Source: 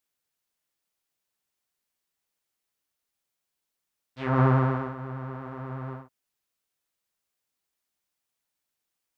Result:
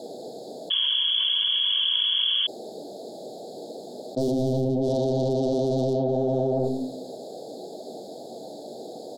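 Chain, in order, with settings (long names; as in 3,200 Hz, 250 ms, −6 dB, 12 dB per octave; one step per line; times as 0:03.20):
adaptive Wiener filter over 15 samples
single-tap delay 572 ms −23 dB
treble cut that deepens with the level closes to 340 Hz, closed at −22.5 dBFS
high-pass filter 140 Hz 24 dB per octave
high-shelf EQ 3,000 Hz −12 dB
mid-hump overdrive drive 34 dB, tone 2,600 Hz, clips at −15 dBFS
gain into a clipping stage and back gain 20.5 dB
on a send at −9 dB: convolution reverb RT60 0.65 s, pre-delay 3 ms
on the sum: sound drawn into the spectrogram noise, 0:00.70–0:02.47, 970–3,400 Hz −24 dBFS
inverse Chebyshev band-stop filter 1,000–2,600 Hz, stop band 40 dB
bass and treble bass −4 dB, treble +3 dB
envelope flattener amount 100%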